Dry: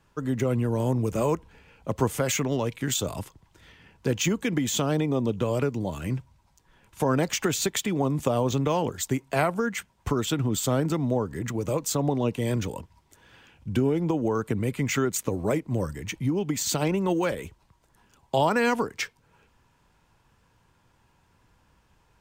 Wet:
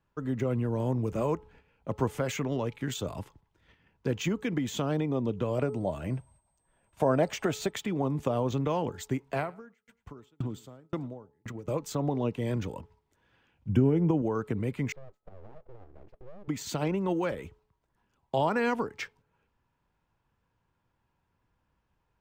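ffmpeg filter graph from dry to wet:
ffmpeg -i in.wav -filter_complex "[0:a]asettb=1/sr,asplit=3[link_01][link_02][link_03];[link_01]atrim=end=5.584[link_04];[link_02]atrim=start=5.58:end=7.71,asetpts=PTS-STARTPTS,afade=type=in:duration=0.004:curve=qsin,afade=type=out:start_time=2.126:duration=0.004:curve=qsin,equalizer=frequency=640:width_type=o:width=0.49:gain=10.5,aeval=exprs='val(0)+0.002*sin(2*PI*8300*n/s)':channel_layout=same[link_05];[link_03]atrim=start=7.706[link_06];[link_04][link_05]acrossfade=duration=0.004:curve1=hsin:curve2=qsin[link_07];[link_07][link_06]acrossfade=duration=0.004:curve1=qsin:curve2=hsin,asettb=1/sr,asplit=3[link_08][link_09][link_10];[link_08]atrim=end=9.354[link_11];[link_09]atrim=start=9.35:end=11.68,asetpts=PTS-STARTPTS,afade=type=in:duration=0.004:curve=qsin,afade=type=out:start_time=2.326:duration=0.004:curve=qsin,aecho=1:1:111|222|333:0.119|0.044|0.0163,atrim=end_sample=102753,aeval=exprs='val(0)*pow(10,-34*if(lt(mod(1.9*n/s,1),2*abs(1.9)/1000),1-mod(1.9*n/s,1)/(2*abs(1.9)/1000),(mod(1.9*n/s,1)-2*abs(1.9)/1000)/(1-2*abs(1.9)/1000))/20)':channel_layout=same[link_12];[link_10]atrim=start=11.676[link_13];[link_11][link_12]acrossfade=duration=0.004:curve1=hsin:curve2=qsin[link_14];[link_14][link_13]acrossfade=duration=0.004:curve1=qsin:curve2=hsin,asettb=1/sr,asplit=3[link_15][link_16][link_17];[link_15]atrim=end=13.694[link_18];[link_16]atrim=start=13.69:end=14.22,asetpts=PTS-STARTPTS,afade=type=in:duration=0.004:curve=qsin,afade=type=out:start_time=0.526:duration=0.004:curve=qsin,asuperstop=centerf=4100:order=12:qfactor=2.7,equalizer=frequency=120:width=0.45:gain=7[link_19];[link_17]atrim=start=14.216[link_20];[link_18][link_19]acrossfade=duration=0.004:curve1=hsin:curve2=qsin[link_21];[link_21][link_20]acrossfade=duration=0.004:curve1=qsin:curve2=hsin,asettb=1/sr,asplit=3[link_22][link_23][link_24];[link_22]atrim=end=14.924[link_25];[link_23]atrim=start=14.92:end=16.48,asetpts=PTS-STARTPTS,afade=type=in:duration=0.004:curve=qsin,afade=type=out:start_time=1.556:duration=0.004:curve=qsin,acompressor=threshold=-32dB:ratio=8:attack=3.2:release=140:knee=1:detection=peak,bandpass=frequency=260:width_type=q:width=2.4,aeval=exprs='abs(val(0))':channel_layout=same[link_26];[link_24]atrim=start=16.476[link_27];[link_25][link_26]acrossfade=duration=0.004:curve1=hsin:curve2=qsin[link_28];[link_28][link_27]acrossfade=duration=0.004:curve1=qsin:curve2=hsin,agate=range=-8dB:threshold=-51dB:ratio=16:detection=peak,equalizer=frequency=11000:width=0.37:gain=-11.5,bandreject=frequency=428:width_type=h:width=4,bandreject=frequency=856:width_type=h:width=4,bandreject=frequency=1284:width_type=h:width=4,volume=-4dB" out.wav

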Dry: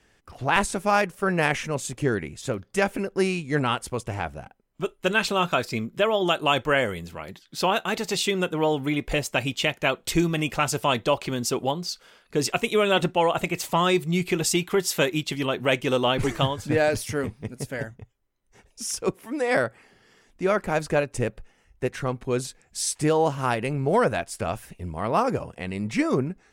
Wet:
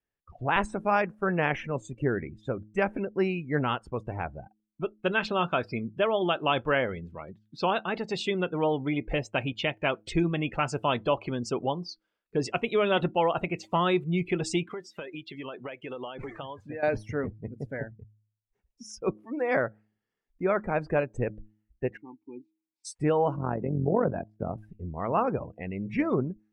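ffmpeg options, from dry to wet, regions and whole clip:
ffmpeg -i in.wav -filter_complex "[0:a]asettb=1/sr,asplit=3[link_01][link_02][link_03];[link_01]atrim=end=14.724[link_04];[link_02]atrim=start=14.72:end=16.83,asetpts=PTS-STARTPTS,afade=type=in:duration=0.004:curve=qsin,afade=type=out:start_time=2.106:duration=0.004:curve=qsin,lowshelf=frequency=280:gain=-12,acompressor=threshold=-29dB:ratio=10:attack=3.2:release=140:knee=1:detection=peak[link_05];[link_03]atrim=start=16.826[link_06];[link_04][link_05]acrossfade=duration=0.004:curve1=hsin:curve2=qsin[link_07];[link_07][link_06]acrossfade=duration=0.004:curve1=qsin:curve2=hsin,asettb=1/sr,asplit=3[link_08][link_09][link_10];[link_08]atrim=end=21.974[link_11];[link_09]atrim=start=21.97:end=22.85,asetpts=PTS-STARTPTS,afade=type=in:duration=0.004:curve=qsin,afade=type=out:start_time=0.876:duration=0.004:curve=qsin,asplit=3[link_12][link_13][link_14];[link_12]bandpass=frequency=300:width_type=q:width=8,volume=0dB[link_15];[link_13]bandpass=frequency=870:width_type=q:width=8,volume=-6dB[link_16];[link_14]bandpass=frequency=2240:width_type=q:width=8,volume=-9dB[link_17];[link_15][link_16][link_17]amix=inputs=3:normalize=0,lowshelf=frequency=95:gain=-8.5[link_18];[link_10]atrim=start=22.846[link_19];[link_11][link_18]acrossfade=duration=0.004:curve1=hsin:curve2=qsin[link_20];[link_20][link_19]acrossfade=duration=0.004:curve1=qsin:curve2=hsin,asettb=1/sr,asplit=3[link_21][link_22][link_23];[link_21]atrim=end=23.364[link_24];[link_22]atrim=start=23.36:end=24.58,asetpts=PTS-STARTPTS,afade=type=in:duration=0.004:curve=qsin,afade=type=out:start_time=1.216:duration=0.004:curve=qsin,tiltshelf=frequency=680:gain=7,tremolo=f=46:d=0.71,highpass=100,lowpass=2700[link_25];[link_23]atrim=start=24.576[link_26];[link_24][link_25]acrossfade=duration=0.004:curve1=hsin:curve2=qsin[link_27];[link_27][link_26]acrossfade=duration=0.004:curve1=qsin:curve2=hsin,lowpass=frequency=2800:poles=1,afftdn=noise_reduction=25:noise_floor=-38,bandreject=frequency=106.5:width_type=h:width=4,bandreject=frequency=213:width_type=h:width=4,bandreject=frequency=319.5:width_type=h:width=4,volume=-3dB" out.wav

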